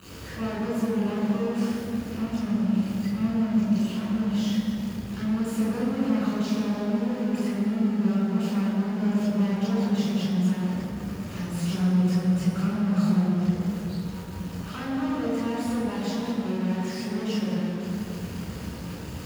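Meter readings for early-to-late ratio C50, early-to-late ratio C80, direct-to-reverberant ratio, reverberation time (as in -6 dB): -1.5 dB, 0.0 dB, -6.5 dB, 3.0 s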